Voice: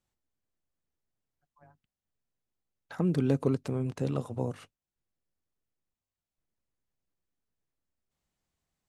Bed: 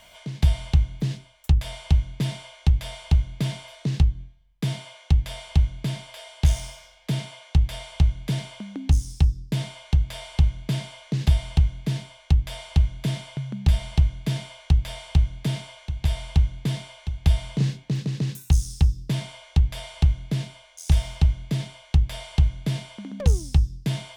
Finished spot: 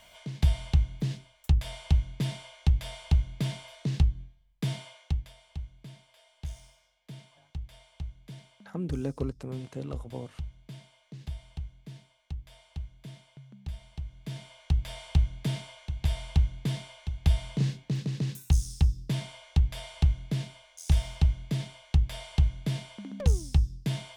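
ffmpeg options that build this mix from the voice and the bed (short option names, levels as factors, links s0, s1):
-filter_complex "[0:a]adelay=5750,volume=0.501[s0];[1:a]volume=3.16,afade=t=out:st=4.82:d=0.51:silence=0.188365,afade=t=in:st=14.03:d=1.02:silence=0.188365[s1];[s0][s1]amix=inputs=2:normalize=0"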